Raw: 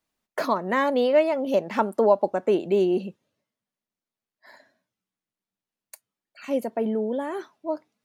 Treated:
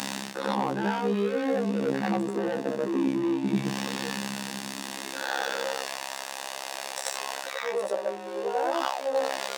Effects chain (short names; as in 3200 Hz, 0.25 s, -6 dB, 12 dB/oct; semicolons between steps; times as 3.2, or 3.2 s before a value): zero-crossing step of -33 dBFS; LPF 9600 Hz 12 dB/oct; bell 80 Hz -7 dB 2.7 oct; sample leveller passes 3; reverse; compressor 10:1, threshold -26 dBFS, peak gain reduction 15.5 dB; reverse; robotiser 80.2 Hz; varispeed -16%; on a send: reverse echo 88 ms -3.5 dB; on the sum: high-pass sweep 200 Hz -> 560 Hz, 4.59–5.97